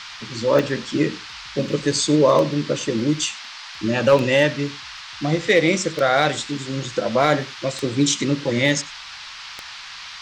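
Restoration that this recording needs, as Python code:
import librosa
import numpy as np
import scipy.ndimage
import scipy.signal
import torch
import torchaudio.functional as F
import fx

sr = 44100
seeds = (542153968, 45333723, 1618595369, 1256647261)

y = fx.fix_declick_ar(x, sr, threshold=10.0)
y = fx.noise_reduce(y, sr, print_start_s=8.94, print_end_s=9.44, reduce_db=28.0)
y = fx.fix_echo_inverse(y, sr, delay_ms=95, level_db=-21.0)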